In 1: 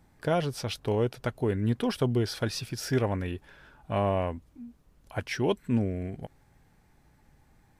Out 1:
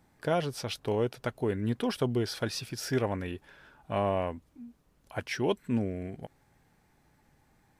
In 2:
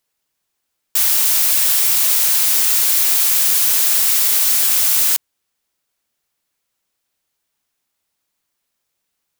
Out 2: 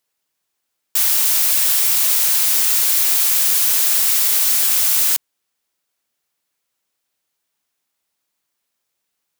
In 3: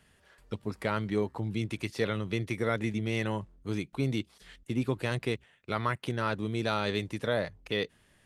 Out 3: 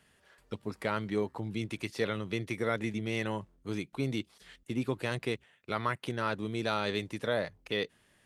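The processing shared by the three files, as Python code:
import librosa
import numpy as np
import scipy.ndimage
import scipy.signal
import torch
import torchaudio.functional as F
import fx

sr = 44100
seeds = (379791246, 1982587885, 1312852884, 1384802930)

y = fx.low_shelf(x, sr, hz=100.0, db=-9.0)
y = F.gain(torch.from_numpy(y), -1.0).numpy()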